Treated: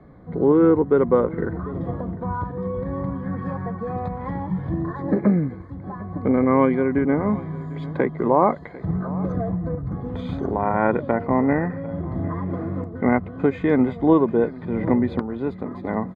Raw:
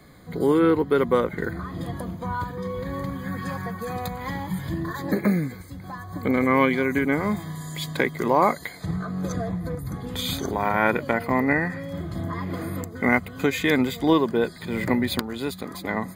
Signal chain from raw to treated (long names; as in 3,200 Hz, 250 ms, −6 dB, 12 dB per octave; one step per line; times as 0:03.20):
low-pass filter 1,000 Hz 12 dB per octave
on a send: single-tap delay 748 ms −19 dB
on the sum: level +3.5 dB